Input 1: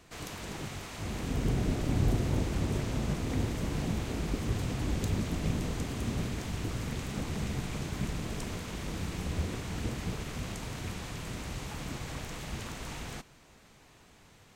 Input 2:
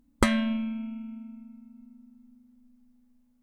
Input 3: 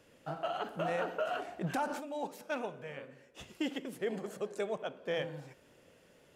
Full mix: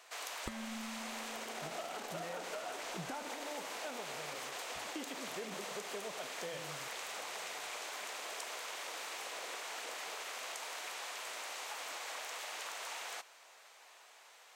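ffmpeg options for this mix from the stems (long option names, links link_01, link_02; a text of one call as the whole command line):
ffmpeg -i stem1.wav -i stem2.wav -i stem3.wav -filter_complex "[0:a]alimiter=limit=-23.5dB:level=0:latency=1:release=22,highpass=frequency=580:width=0.5412,highpass=frequency=580:width=1.3066,volume=2dB[link_01];[1:a]adelay=250,volume=-13.5dB[link_02];[2:a]adelay=1350,volume=-5dB[link_03];[link_01][link_02][link_03]amix=inputs=3:normalize=0,acompressor=threshold=-39dB:ratio=6" out.wav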